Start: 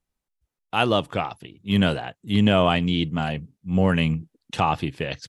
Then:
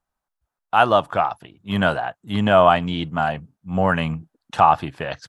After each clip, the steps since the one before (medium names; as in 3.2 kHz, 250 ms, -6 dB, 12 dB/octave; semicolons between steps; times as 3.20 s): high-order bell 1 kHz +11 dB; trim -2.5 dB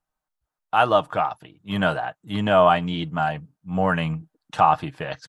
comb 6.5 ms, depth 38%; trim -3 dB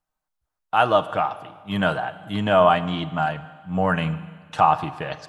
Schroeder reverb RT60 1.6 s, combs from 33 ms, DRR 14 dB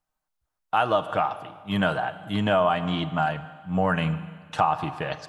compression 4:1, threshold -18 dBFS, peak gain reduction 6.5 dB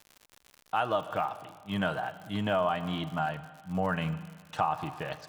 crackle 110 per s -33 dBFS; trim -6.5 dB